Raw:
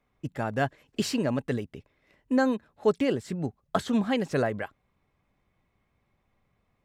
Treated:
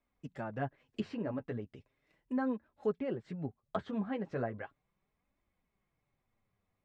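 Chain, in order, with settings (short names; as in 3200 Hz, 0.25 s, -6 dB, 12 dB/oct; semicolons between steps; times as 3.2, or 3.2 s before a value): treble ducked by the level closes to 1700 Hz, closed at -25 dBFS; flange 0.37 Hz, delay 3 ms, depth 7.9 ms, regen -21%; gain -6 dB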